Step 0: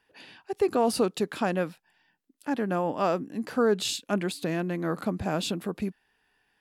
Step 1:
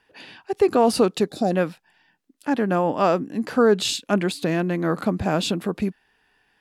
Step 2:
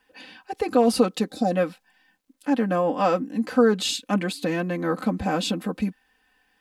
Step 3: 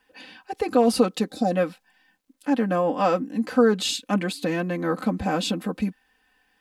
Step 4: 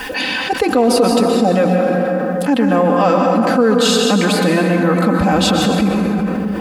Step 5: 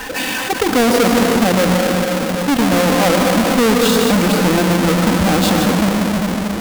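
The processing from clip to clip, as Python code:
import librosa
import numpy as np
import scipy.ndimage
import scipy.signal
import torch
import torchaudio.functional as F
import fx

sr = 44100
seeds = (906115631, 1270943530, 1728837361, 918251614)

y1 = fx.spec_box(x, sr, start_s=1.28, length_s=0.23, low_hz=810.0, high_hz=3500.0, gain_db=-19)
y1 = fx.high_shelf(y1, sr, hz=11000.0, db=-8.0)
y1 = y1 * librosa.db_to_amplitude(6.5)
y2 = y1 + 0.86 * np.pad(y1, (int(3.9 * sr / 1000.0), 0))[:len(y1)]
y2 = fx.quant_dither(y2, sr, seeds[0], bits=12, dither='none')
y2 = y2 * librosa.db_to_amplitude(-4.0)
y3 = y2
y4 = fx.rev_plate(y3, sr, seeds[1], rt60_s=2.1, hf_ratio=0.5, predelay_ms=110, drr_db=2.5)
y4 = fx.env_flatten(y4, sr, amount_pct=70)
y4 = y4 * librosa.db_to_amplitude(2.0)
y5 = fx.halfwave_hold(y4, sr)
y5 = y5 * librosa.db_to_amplitude(-4.5)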